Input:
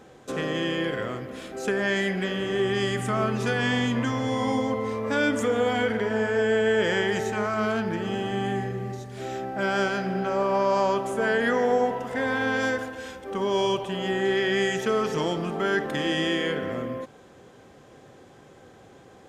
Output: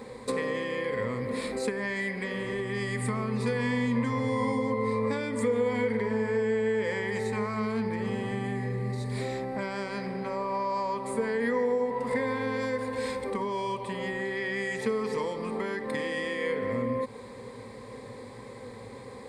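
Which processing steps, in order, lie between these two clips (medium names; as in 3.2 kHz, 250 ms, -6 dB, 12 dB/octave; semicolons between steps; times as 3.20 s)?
compression, threshold -35 dBFS, peak gain reduction 16 dB; rippled EQ curve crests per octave 0.95, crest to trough 14 dB; trim +4.5 dB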